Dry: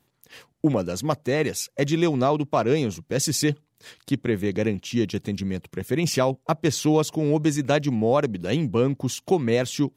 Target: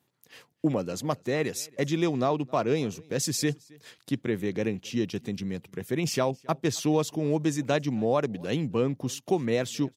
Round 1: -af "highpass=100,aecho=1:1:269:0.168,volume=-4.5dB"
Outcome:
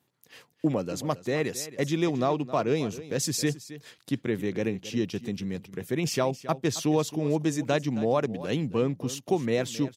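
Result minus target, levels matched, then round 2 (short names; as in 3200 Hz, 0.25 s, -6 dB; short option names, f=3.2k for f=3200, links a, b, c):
echo-to-direct +10.5 dB
-af "highpass=100,aecho=1:1:269:0.0501,volume=-4.5dB"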